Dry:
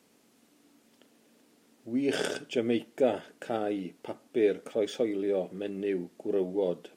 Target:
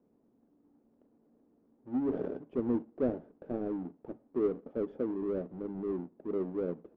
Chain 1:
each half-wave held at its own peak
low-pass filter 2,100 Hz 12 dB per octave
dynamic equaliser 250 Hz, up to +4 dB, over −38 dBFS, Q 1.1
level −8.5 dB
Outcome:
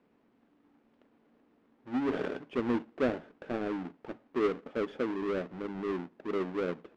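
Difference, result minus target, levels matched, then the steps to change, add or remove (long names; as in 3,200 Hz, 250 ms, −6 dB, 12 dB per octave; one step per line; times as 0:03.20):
2,000 Hz band +15.5 dB
change: low-pass filter 600 Hz 12 dB per octave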